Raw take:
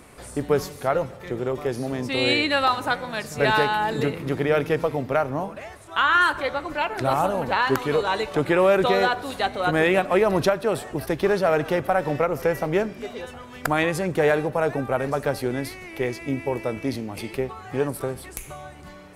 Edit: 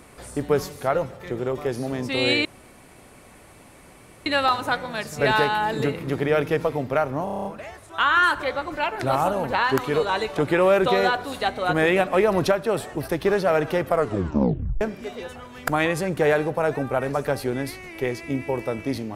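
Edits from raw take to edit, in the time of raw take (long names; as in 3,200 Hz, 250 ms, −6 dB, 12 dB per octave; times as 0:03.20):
0:02.45: splice in room tone 1.81 s
0:05.43: stutter 0.03 s, 8 plays
0:11.83: tape stop 0.96 s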